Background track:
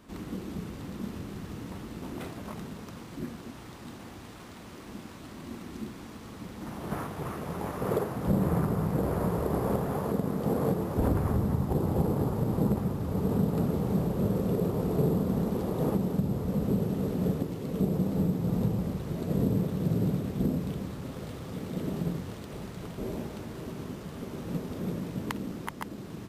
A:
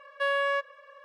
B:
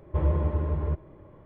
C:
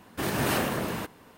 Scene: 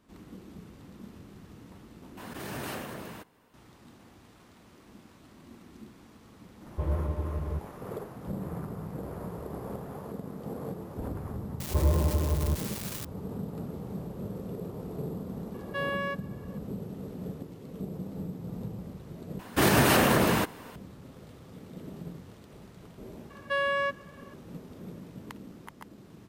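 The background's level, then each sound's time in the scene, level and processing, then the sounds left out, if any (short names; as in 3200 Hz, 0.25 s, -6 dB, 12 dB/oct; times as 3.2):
background track -10 dB
2.17 replace with C -11 dB + backwards sustainer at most 23 dB/s
6.64 add B -5.5 dB
11.6 add B -0.5 dB + switching spikes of -21.5 dBFS
15.54 add A -5.5 dB
19.39 replace with C -11 dB + maximiser +18.5 dB
23.3 add A -1 dB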